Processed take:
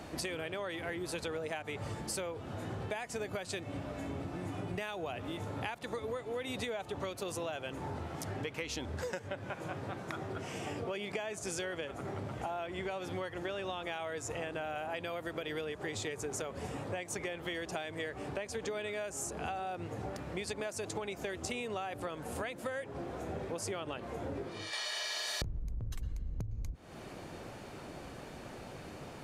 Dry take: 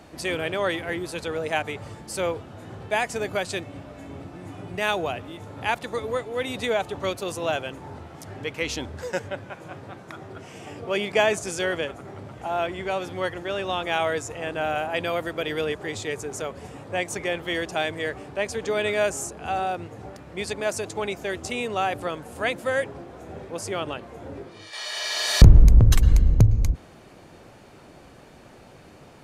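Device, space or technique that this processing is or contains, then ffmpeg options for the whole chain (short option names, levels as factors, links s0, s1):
serial compression, peaks first: -af "acompressor=threshold=0.0251:ratio=8,acompressor=threshold=0.0126:ratio=2.5,volume=1.19"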